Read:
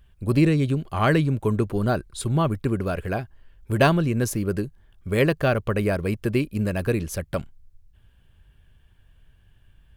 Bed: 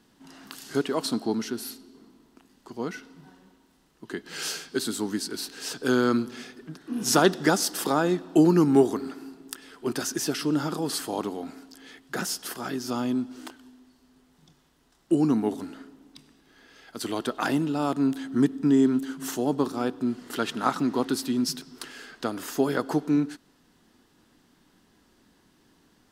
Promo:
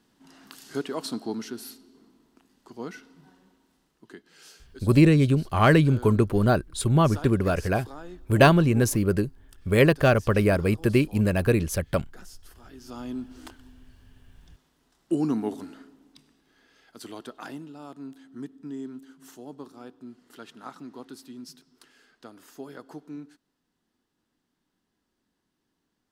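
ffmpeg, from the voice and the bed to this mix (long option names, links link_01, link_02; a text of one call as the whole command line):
ffmpeg -i stem1.wav -i stem2.wav -filter_complex "[0:a]adelay=4600,volume=2dB[link_01];[1:a]volume=11.5dB,afade=type=out:start_time=3.75:duration=0.59:silence=0.188365,afade=type=in:start_time=12.69:duration=0.82:silence=0.158489,afade=type=out:start_time=15.58:duration=2.16:silence=0.211349[link_02];[link_01][link_02]amix=inputs=2:normalize=0" out.wav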